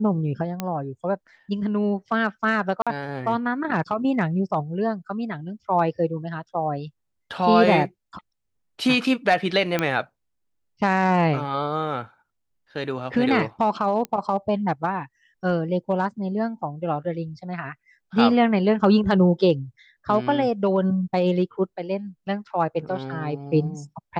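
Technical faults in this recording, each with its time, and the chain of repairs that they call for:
0:00.60: click −12 dBFS
0:02.82–0:02.87: drop-out 46 ms
0:09.79: click −8 dBFS
0:14.05: click −15 dBFS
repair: click removal
repair the gap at 0:02.82, 46 ms

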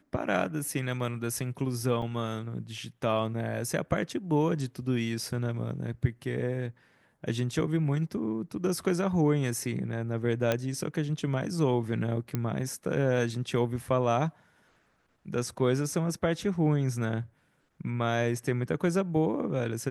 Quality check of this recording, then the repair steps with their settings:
0:02.02: drop-out 3 ms
0:10.52: click −12 dBFS
0:12.35: click −16 dBFS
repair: click removal
repair the gap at 0:02.02, 3 ms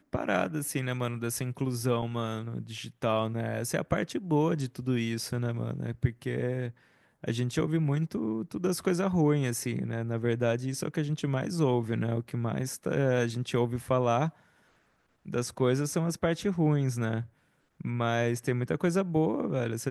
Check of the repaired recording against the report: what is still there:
none of them is left

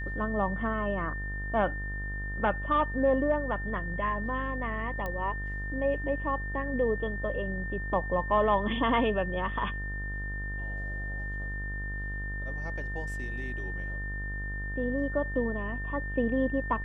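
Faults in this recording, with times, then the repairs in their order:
mains buzz 50 Hz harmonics 32 −36 dBFS
whistle 1,800 Hz −37 dBFS
0:05.06: click −22 dBFS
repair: click removal
notch filter 1,800 Hz, Q 30
hum removal 50 Hz, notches 32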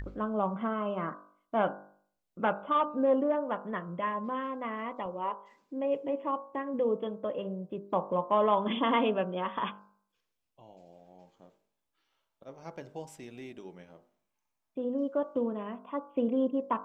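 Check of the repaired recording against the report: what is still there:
0:05.06: click

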